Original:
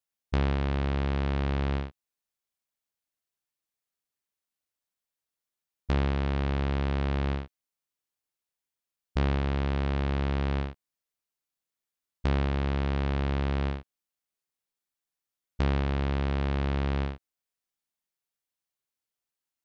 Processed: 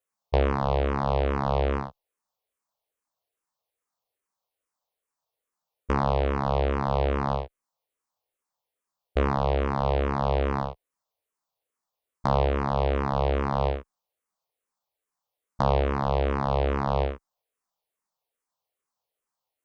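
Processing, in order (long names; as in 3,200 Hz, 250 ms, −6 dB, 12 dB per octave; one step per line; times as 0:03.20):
flat-topped bell 720 Hz +10.5 dB
frequency shifter mixed with the dry sound −2.4 Hz
level +3.5 dB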